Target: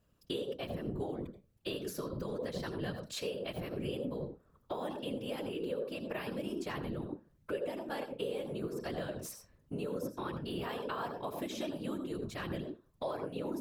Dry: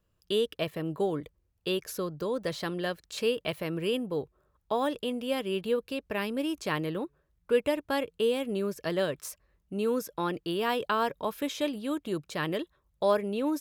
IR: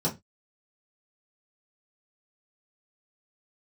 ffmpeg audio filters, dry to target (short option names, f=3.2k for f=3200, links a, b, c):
-filter_complex "[0:a]asplit=2[a][b];[1:a]atrim=start_sample=2205,adelay=79[c];[b][c]afir=irnorm=-1:irlink=0,volume=-16.5dB[d];[a][d]amix=inputs=2:normalize=0,acompressor=threshold=-40dB:ratio=4,afftfilt=real='hypot(re,im)*cos(2*PI*random(0))':imag='hypot(re,im)*sin(2*PI*random(1))':win_size=512:overlap=0.75,volume=8dB"